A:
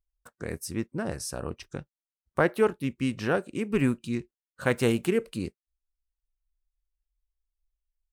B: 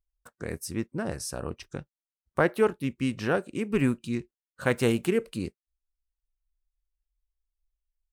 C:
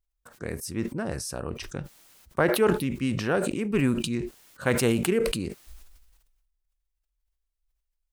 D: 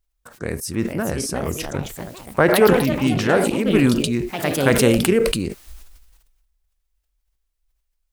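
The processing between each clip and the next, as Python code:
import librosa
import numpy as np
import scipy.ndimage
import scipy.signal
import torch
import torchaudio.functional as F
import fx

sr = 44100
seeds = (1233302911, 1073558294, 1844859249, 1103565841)

y1 = x
y2 = fx.sustainer(y1, sr, db_per_s=41.0)
y3 = fx.echo_pitch(y2, sr, ms=519, semitones=3, count=3, db_per_echo=-6.0)
y3 = y3 * 10.0 ** (7.0 / 20.0)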